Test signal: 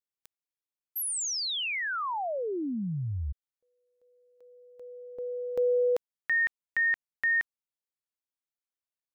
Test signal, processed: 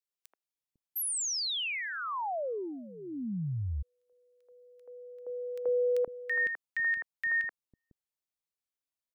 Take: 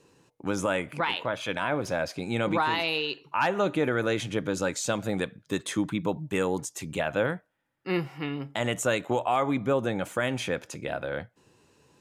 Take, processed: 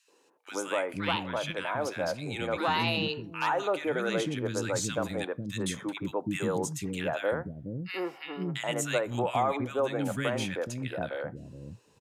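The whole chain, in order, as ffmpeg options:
-filter_complex "[0:a]acrossover=split=310|1600[a][b][c];[b]adelay=80[d];[a]adelay=500[e];[e][d][c]amix=inputs=3:normalize=0,volume=-1dB"

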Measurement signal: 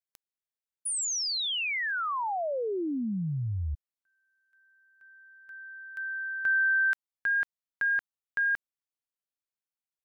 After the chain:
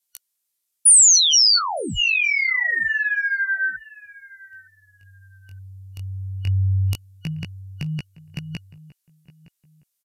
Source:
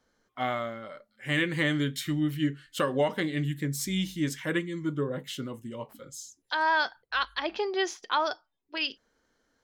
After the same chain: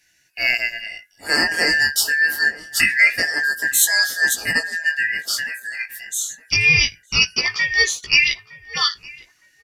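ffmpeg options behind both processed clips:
-filter_complex "[0:a]afftfilt=real='real(if(lt(b,272),68*(eq(floor(b/68),0)*1+eq(floor(b/68),1)*0+eq(floor(b/68),2)*3+eq(floor(b/68),3)*2)+mod(b,68),b),0)':imag='imag(if(lt(b,272),68*(eq(floor(b/68),0)*1+eq(floor(b/68),1)*0+eq(floor(b/68),2)*3+eq(floor(b/68),3)*2)+mod(b,68),b),0)':win_size=2048:overlap=0.75,crystalizer=i=6:c=0,flanger=delay=15:depth=7.9:speed=0.25,asplit=2[a][b];[b]adelay=913,lowpass=f=1.7k:p=1,volume=-18.5dB,asplit=2[c][d];[d]adelay=913,lowpass=f=1.7k:p=1,volume=0.28[e];[a][c][e]amix=inputs=3:normalize=0,aresample=32000,aresample=44100,volume=6dB"

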